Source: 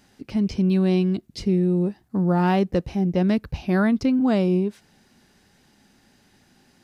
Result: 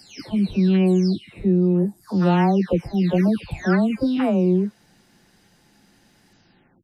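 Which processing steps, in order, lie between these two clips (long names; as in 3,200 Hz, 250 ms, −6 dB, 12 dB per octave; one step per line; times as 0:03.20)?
every frequency bin delayed by itself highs early, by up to 501 ms
level +2.5 dB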